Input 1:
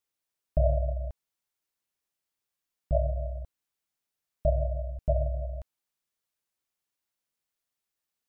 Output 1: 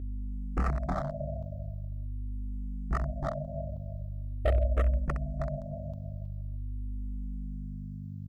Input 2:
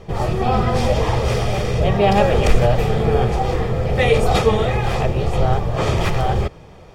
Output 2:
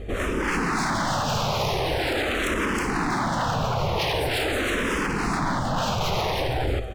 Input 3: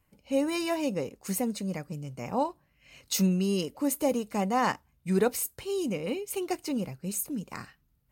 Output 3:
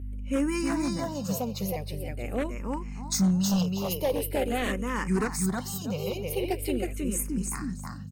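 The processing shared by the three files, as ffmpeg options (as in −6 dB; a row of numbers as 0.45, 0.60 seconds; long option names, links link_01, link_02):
-filter_complex "[0:a]alimiter=limit=-10dB:level=0:latency=1:release=33,aecho=1:1:318|636|954:0.708|0.17|0.0408,aeval=exprs='val(0)+0.0178*(sin(2*PI*50*n/s)+sin(2*PI*2*50*n/s)/2+sin(2*PI*3*50*n/s)/3+sin(2*PI*4*50*n/s)/4+sin(2*PI*5*50*n/s)/5)':channel_layout=same,aeval=exprs='0.106*(abs(mod(val(0)/0.106+3,4)-2)-1)':channel_layout=same,asplit=2[link_01][link_02];[link_02]afreqshift=-0.44[link_03];[link_01][link_03]amix=inputs=2:normalize=1,volume=2.5dB"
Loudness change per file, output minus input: −4.0, −6.5, +1.0 LU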